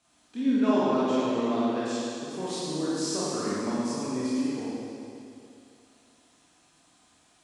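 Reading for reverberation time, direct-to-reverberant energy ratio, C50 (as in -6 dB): 2.6 s, -9.5 dB, -5.5 dB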